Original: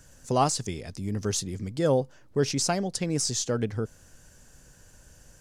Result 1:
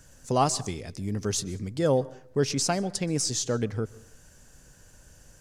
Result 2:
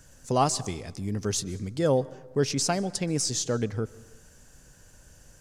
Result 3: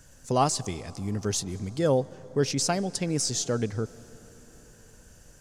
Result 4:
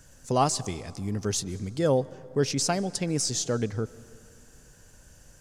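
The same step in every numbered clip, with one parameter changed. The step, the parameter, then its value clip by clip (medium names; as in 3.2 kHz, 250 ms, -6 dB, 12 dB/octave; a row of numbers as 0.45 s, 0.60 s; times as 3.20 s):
plate-style reverb, RT60: 0.52 s, 1.1 s, 5.2 s, 2.5 s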